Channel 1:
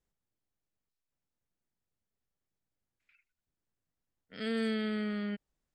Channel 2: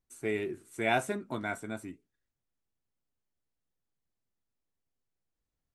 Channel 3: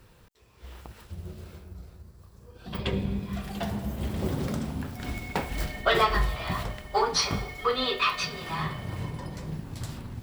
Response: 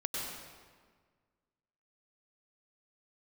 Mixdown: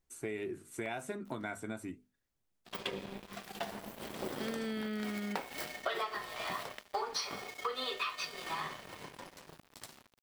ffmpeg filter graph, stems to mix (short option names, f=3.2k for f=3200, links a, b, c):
-filter_complex "[0:a]volume=-2dB[a];[1:a]bandreject=f=50:t=h:w=6,bandreject=f=100:t=h:w=6,bandreject=f=150:t=h:w=6,bandreject=f=200:t=h:w=6,bandreject=f=250:t=h:w=6,acompressor=threshold=-36dB:ratio=3,volume=1.5dB[b];[2:a]highpass=360,bandreject=f=6.8k:w=12,aeval=exprs='sgn(val(0))*max(abs(val(0))-0.00668,0)':c=same,volume=1dB[c];[a][b][c]amix=inputs=3:normalize=0,acompressor=threshold=-34dB:ratio=6"